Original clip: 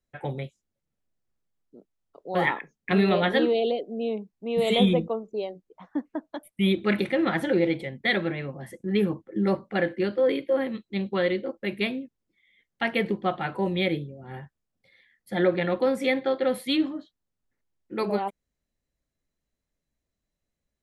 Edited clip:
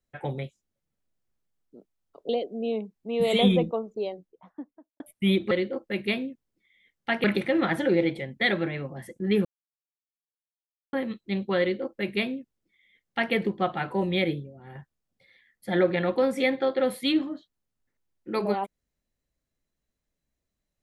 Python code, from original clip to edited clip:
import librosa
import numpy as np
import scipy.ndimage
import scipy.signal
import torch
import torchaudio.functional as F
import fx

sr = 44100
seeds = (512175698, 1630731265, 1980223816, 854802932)

y = fx.studio_fade_out(x, sr, start_s=5.35, length_s=1.02)
y = fx.edit(y, sr, fx.cut(start_s=2.29, length_s=1.37),
    fx.silence(start_s=9.09, length_s=1.48),
    fx.duplicate(start_s=11.24, length_s=1.73, to_s=6.88),
    fx.fade_out_to(start_s=14.04, length_s=0.35, curve='qua', floor_db=-7.0), tone=tone)